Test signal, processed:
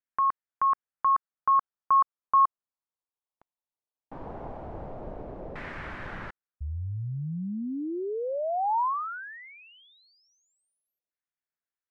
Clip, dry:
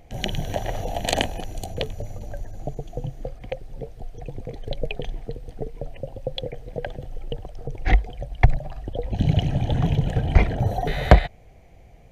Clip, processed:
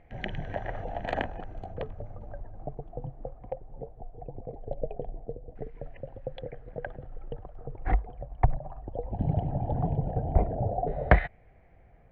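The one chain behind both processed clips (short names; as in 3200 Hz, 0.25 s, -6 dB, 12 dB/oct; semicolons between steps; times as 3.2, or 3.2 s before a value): LFO low-pass saw down 0.18 Hz 600–1900 Hz; gain -8 dB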